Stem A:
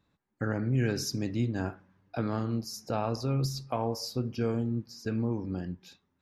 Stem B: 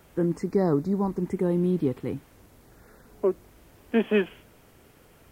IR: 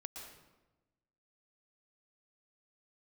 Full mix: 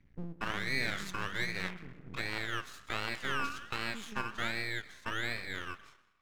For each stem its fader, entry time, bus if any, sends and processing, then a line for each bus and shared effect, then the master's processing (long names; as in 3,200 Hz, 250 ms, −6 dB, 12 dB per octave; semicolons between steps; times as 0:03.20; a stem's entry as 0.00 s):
+0.5 dB, 0.00 s, send −6.5 dB, ring modulator whose carrier an LFO sweeps 1,700 Hz, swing 25%, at 1.3 Hz
−4.0 dB, 0.00 s, send −3.5 dB, inverse Chebyshev low-pass filter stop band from 1,300 Hz, stop band 80 dB; downward compressor, threshold −30 dBFS, peak gain reduction 6.5 dB; automatic ducking −14 dB, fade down 0.20 s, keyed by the first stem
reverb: on, RT60 1.1 s, pre-delay 109 ms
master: low-pass filter 2,300 Hz 6 dB per octave; half-wave rectification